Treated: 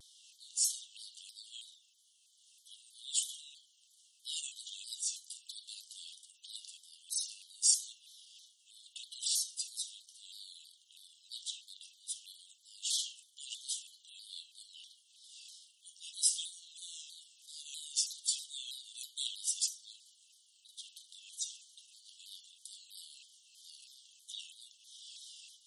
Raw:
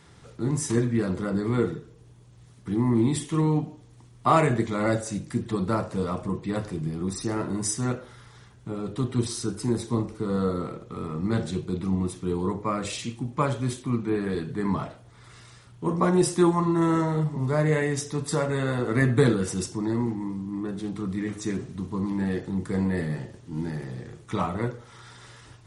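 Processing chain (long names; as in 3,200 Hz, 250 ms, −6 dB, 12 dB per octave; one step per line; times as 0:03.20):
linear-phase brick-wall high-pass 2,800 Hz
pitch modulation by a square or saw wave saw down 3.1 Hz, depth 160 cents
level +2 dB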